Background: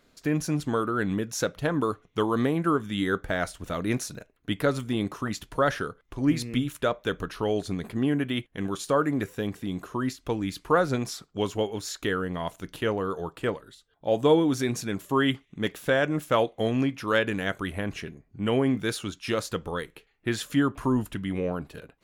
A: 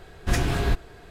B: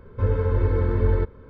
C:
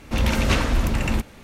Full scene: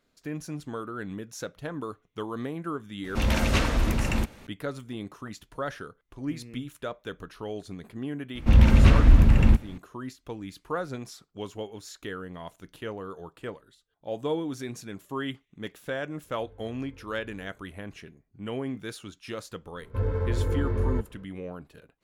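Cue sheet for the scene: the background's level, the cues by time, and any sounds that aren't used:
background -9 dB
3.04 s: add C -3.5 dB
8.35 s: add C -4.5 dB + tone controls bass +11 dB, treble -8 dB
16.23 s: add B -16.5 dB + compression, threshold -33 dBFS
19.76 s: add B -8 dB + waveshaping leveller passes 1
not used: A

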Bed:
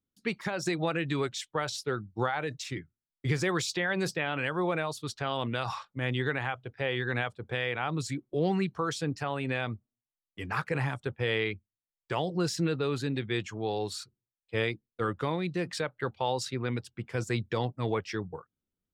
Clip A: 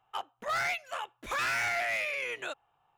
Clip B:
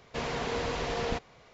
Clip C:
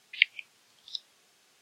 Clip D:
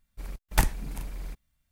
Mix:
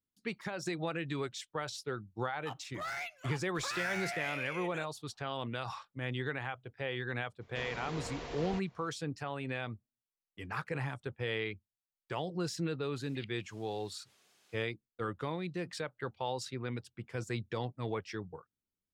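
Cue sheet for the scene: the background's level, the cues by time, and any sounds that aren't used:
bed -6.5 dB
2.32 s: add A -8.5 dB
7.41 s: add B -10.5 dB
13.02 s: add C -4 dB + compression 3:1, threshold -51 dBFS
not used: D

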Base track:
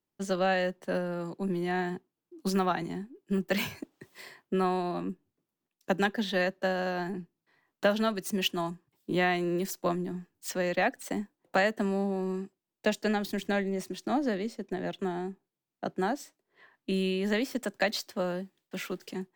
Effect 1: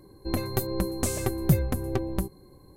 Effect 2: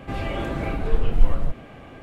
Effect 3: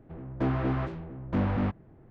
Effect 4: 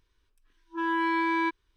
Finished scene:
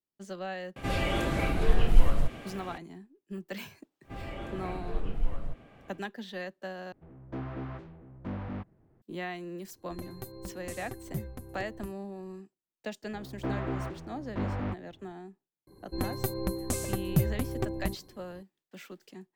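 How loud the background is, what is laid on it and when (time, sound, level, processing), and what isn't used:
base track -10.5 dB
0.76 s: add 2 -2.5 dB + treble shelf 3 kHz +11 dB
4.02 s: add 2 -12 dB, fades 0.10 s
6.92 s: replace with 3 -10 dB
9.65 s: add 1 -15 dB
13.03 s: add 3 -4 dB + peaking EQ 180 Hz -4 dB 0.96 oct
15.67 s: add 1 -4 dB
not used: 4

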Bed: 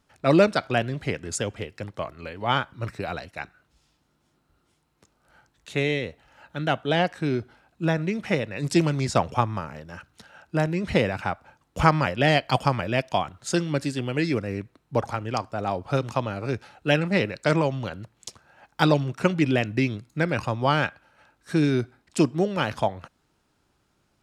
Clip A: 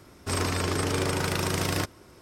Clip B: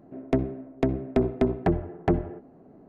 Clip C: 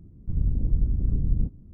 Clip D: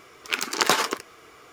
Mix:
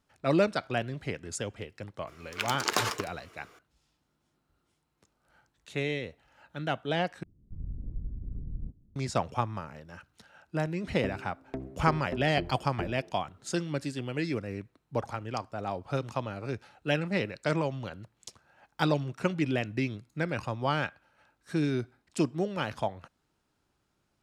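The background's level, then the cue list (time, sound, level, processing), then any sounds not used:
bed -7 dB
2.07 s: add D -7.5 dB
7.23 s: replace with C -14 dB
10.71 s: add B -13.5 dB
not used: A

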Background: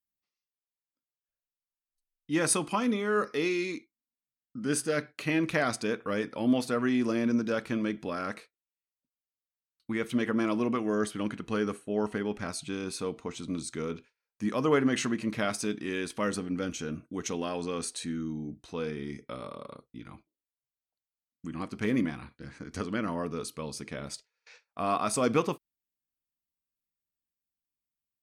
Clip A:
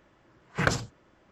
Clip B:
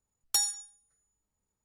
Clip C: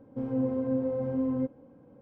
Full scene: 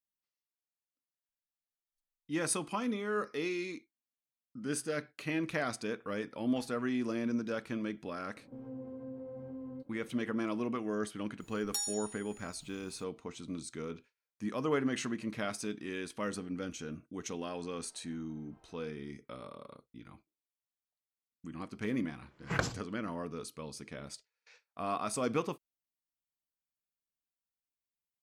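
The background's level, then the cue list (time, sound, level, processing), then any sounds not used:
background -6.5 dB
6.22 s: add B -10 dB + low-pass 1 kHz
8.36 s: add C -4.5 dB + compression 2:1, threshold -46 dBFS
11.40 s: add B -9.5 dB + level flattener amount 50%
17.38 s: add C -13.5 dB + spectral gate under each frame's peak -30 dB weak
21.92 s: add A -7 dB

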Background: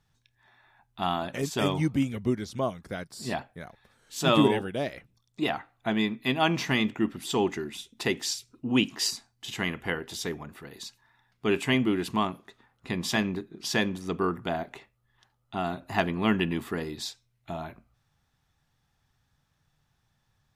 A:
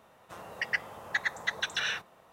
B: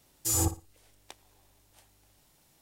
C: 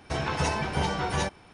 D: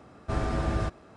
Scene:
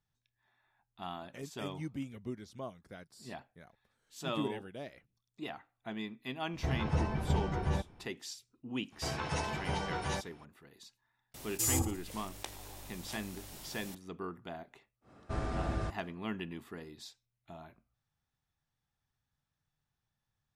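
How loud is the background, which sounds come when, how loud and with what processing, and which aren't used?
background -14 dB
6.53 s: add C -10.5 dB + tilt EQ -3 dB/octave
8.92 s: add C -8 dB
11.34 s: add B -5 dB + level flattener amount 50%
15.01 s: add D -7 dB, fades 0.10 s
not used: A

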